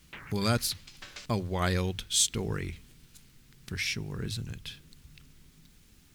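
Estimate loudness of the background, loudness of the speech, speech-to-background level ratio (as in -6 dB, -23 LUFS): -48.0 LUFS, -31.0 LUFS, 17.0 dB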